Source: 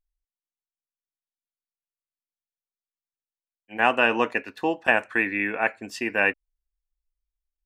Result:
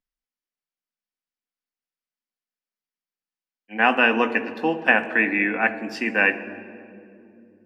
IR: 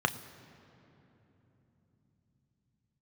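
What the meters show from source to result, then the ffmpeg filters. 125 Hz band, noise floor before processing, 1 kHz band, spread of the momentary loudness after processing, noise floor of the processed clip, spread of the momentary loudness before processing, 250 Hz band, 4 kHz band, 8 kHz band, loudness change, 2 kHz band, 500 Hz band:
+3.0 dB, below −85 dBFS, +2.0 dB, 14 LU, below −85 dBFS, 8 LU, +5.0 dB, +2.5 dB, can't be measured, +3.0 dB, +3.5 dB, +1.5 dB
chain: -filter_complex "[1:a]atrim=start_sample=2205,asetrate=74970,aresample=44100[link_01];[0:a][link_01]afir=irnorm=-1:irlink=0,volume=-3dB"

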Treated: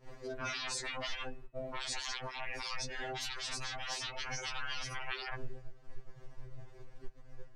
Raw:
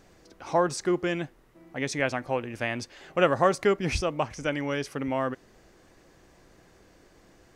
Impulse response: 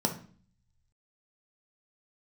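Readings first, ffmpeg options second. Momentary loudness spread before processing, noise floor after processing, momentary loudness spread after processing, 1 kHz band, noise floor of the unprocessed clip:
11 LU, −54 dBFS, 20 LU, −13.0 dB, −58 dBFS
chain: -filter_complex "[0:a]agate=range=-21dB:threshold=-55dB:ratio=16:detection=peak,asplit=2[link_01][link_02];[link_02]aeval=exprs='0.422*sin(PI/2*7.08*val(0)/0.422)':channel_layout=same,volume=-3.5dB[link_03];[link_01][link_03]amix=inputs=2:normalize=0,afftdn=noise_reduction=14:noise_floor=-31,lowpass=frequency=2600:poles=1,afftfilt=real='re*lt(hypot(re,im),0.126)':imag='im*lt(hypot(re,im),0.126)':win_size=1024:overlap=0.75,asubboost=boost=8.5:cutoff=86,alimiter=limit=-22.5dB:level=0:latency=1:release=148,acompressor=threshold=-49dB:ratio=3,bandreject=frequency=369.5:width_type=h:width=4,bandreject=frequency=739:width_type=h:width=4,bandreject=frequency=1108.5:width_type=h:width=4,bandreject=frequency=1478:width_type=h:width=4,bandreject=frequency=1847.5:width_type=h:width=4,bandreject=frequency=2217:width_type=h:width=4,bandreject=frequency=2586.5:width_type=h:width=4,bandreject=frequency=2956:width_type=h:width=4,bandreject=frequency=3325.5:width_type=h:width=4,bandreject=frequency=3695:width_type=h:width=4,bandreject=frequency=4064.5:width_type=h:width=4,afftfilt=real='re*2.45*eq(mod(b,6),0)':imag='im*2.45*eq(mod(b,6),0)':win_size=2048:overlap=0.75,volume=10.5dB"

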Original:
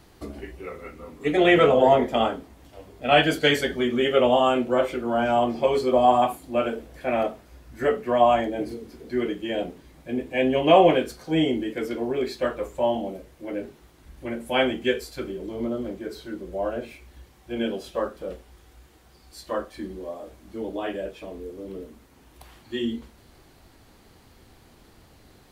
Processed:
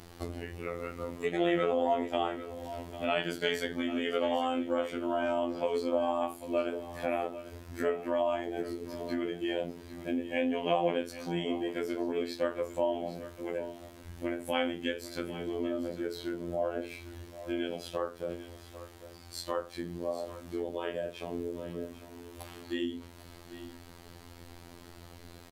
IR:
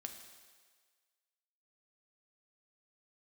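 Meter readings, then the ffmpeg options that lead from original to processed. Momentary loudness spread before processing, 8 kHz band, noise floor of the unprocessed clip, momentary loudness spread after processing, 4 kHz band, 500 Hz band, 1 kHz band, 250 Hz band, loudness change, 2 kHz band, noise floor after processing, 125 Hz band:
20 LU, can't be measured, −55 dBFS, 18 LU, −10.0 dB, −9.0 dB, −11.5 dB, −7.5 dB, −10.5 dB, −10.0 dB, −51 dBFS, −9.0 dB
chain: -filter_complex "[0:a]acompressor=threshold=-37dB:ratio=2.5,afftfilt=real='hypot(re,im)*cos(PI*b)':imag='0':win_size=2048:overlap=0.75,asplit=2[link_01][link_02];[link_02]aecho=0:1:798:0.2[link_03];[link_01][link_03]amix=inputs=2:normalize=0,volume=6dB"

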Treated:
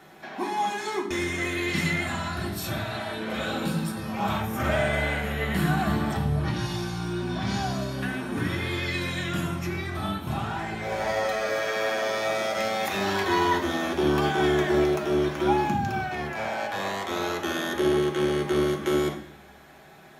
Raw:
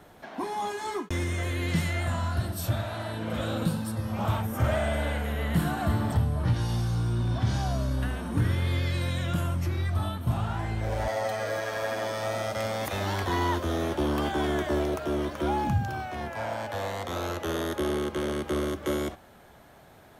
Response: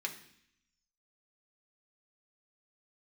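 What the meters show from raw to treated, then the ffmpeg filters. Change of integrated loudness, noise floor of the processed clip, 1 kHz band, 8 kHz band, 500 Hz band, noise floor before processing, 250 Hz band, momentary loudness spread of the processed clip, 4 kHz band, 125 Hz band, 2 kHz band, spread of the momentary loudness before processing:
+2.5 dB, −49 dBFS, +4.0 dB, +2.5 dB, +4.0 dB, −53 dBFS, +3.5 dB, 7 LU, +5.0 dB, −3.5 dB, +6.5 dB, 6 LU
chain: -filter_complex "[1:a]atrim=start_sample=2205[link_01];[0:a][link_01]afir=irnorm=-1:irlink=0,volume=4dB"

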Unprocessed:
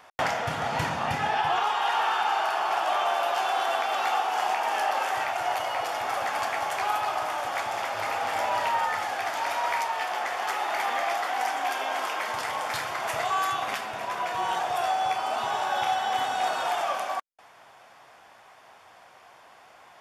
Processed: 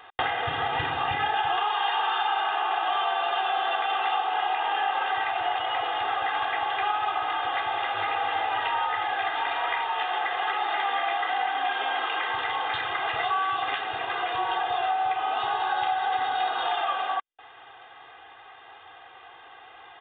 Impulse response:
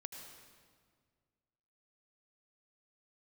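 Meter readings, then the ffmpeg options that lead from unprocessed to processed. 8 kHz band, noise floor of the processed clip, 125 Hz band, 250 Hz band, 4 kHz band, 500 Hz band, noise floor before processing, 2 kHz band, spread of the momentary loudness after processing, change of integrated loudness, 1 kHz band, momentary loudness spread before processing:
below −40 dB, −49 dBFS, can't be measured, −2.5 dB, +3.0 dB, −3.0 dB, −53 dBFS, +2.0 dB, 2 LU, +1.0 dB, +1.0 dB, 5 LU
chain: -af "highshelf=frequency=2000:gain=8.5,bandreject=frequency=2300:width=8.9,aecho=1:1:2.5:0.88,acompressor=threshold=-25dB:ratio=2.5,aresample=8000,aresample=44100"

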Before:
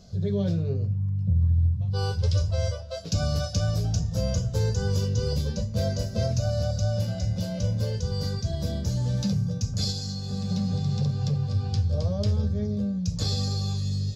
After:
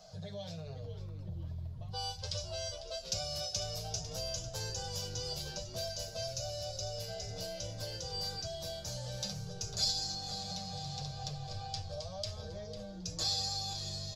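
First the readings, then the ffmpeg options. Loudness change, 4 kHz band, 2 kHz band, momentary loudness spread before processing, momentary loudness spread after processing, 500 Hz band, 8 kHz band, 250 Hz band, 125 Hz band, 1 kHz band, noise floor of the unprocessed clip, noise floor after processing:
−11.5 dB, −0.5 dB, −7.0 dB, 4 LU, 11 LU, −10.0 dB, can't be measured, −19.5 dB, −19.0 dB, −3.0 dB, −34 dBFS, −46 dBFS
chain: -filter_complex "[0:a]lowshelf=frequency=480:width_type=q:width=3:gain=-12,aecho=1:1:6.4:0.54,asplit=5[link_01][link_02][link_03][link_04][link_05];[link_02]adelay=499,afreqshift=-130,volume=-13dB[link_06];[link_03]adelay=998,afreqshift=-260,volume=-21.9dB[link_07];[link_04]adelay=1497,afreqshift=-390,volume=-30.7dB[link_08];[link_05]adelay=1996,afreqshift=-520,volume=-39.6dB[link_09];[link_01][link_06][link_07][link_08][link_09]amix=inputs=5:normalize=0,acrossover=split=100|2500[link_10][link_11][link_12];[link_11]acompressor=threshold=-42dB:ratio=4[link_13];[link_10][link_13][link_12]amix=inputs=3:normalize=0,volume=-2dB"

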